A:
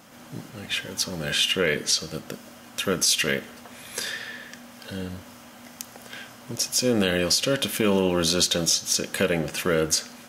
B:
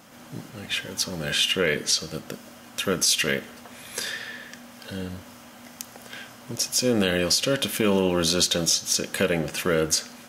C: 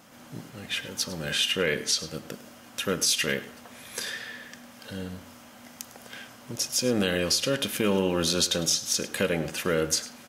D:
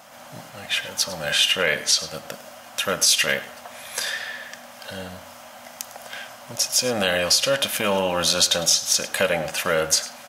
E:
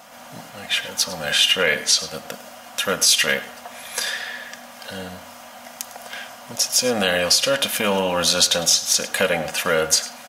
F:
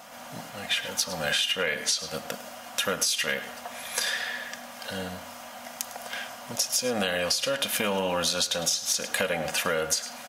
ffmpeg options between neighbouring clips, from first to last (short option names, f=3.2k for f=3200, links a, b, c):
-af anull
-af "aecho=1:1:103:0.15,volume=-3dB"
-af "lowshelf=f=500:t=q:w=3:g=-7.5,volume=6.5dB"
-af "aecho=1:1:4.2:0.34,volume=1.5dB"
-af "acompressor=threshold=-21dB:ratio=12,volume=-1.5dB"